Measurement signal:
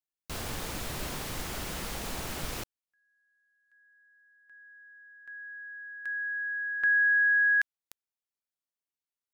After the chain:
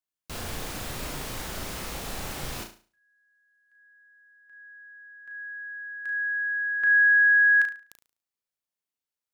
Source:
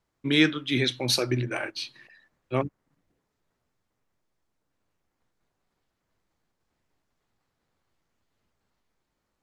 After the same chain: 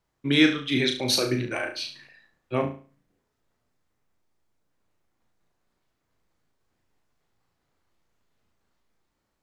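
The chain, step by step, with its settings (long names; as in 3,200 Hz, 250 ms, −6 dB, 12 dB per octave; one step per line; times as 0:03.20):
flutter between parallel walls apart 6.1 metres, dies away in 0.38 s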